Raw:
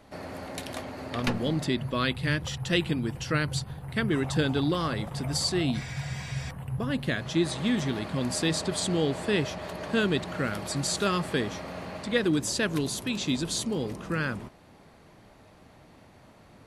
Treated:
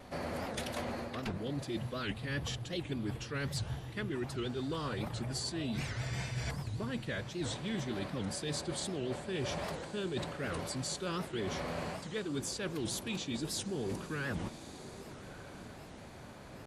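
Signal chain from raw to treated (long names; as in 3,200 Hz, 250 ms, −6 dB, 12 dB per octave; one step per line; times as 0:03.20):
dynamic equaliser 420 Hz, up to +3 dB, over −44 dBFS, Q 7.3
reversed playback
downward compressor 16 to 1, threshold −37 dBFS, peak gain reduction 18.5 dB
reversed playback
phase-vocoder pitch shift with formants kept −1.5 semitones
in parallel at −11 dB: hard clipping −35 dBFS, distortion −19 dB
on the sum: pitch vibrato 1.8 Hz 27 cents
feedback delay with all-pass diffusion 1,200 ms, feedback 42%, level −14.5 dB
wow of a warped record 78 rpm, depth 250 cents
level +1.5 dB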